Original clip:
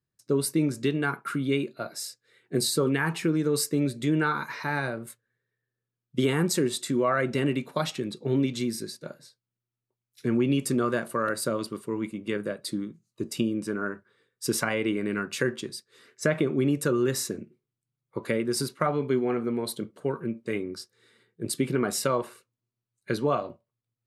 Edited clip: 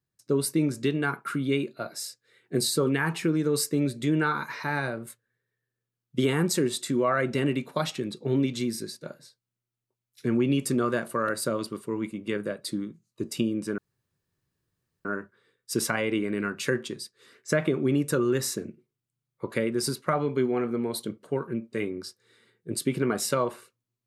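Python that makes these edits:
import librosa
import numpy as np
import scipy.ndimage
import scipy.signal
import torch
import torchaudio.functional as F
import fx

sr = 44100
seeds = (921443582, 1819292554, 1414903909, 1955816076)

y = fx.edit(x, sr, fx.insert_room_tone(at_s=13.78, length_s=1.27), tone=tone)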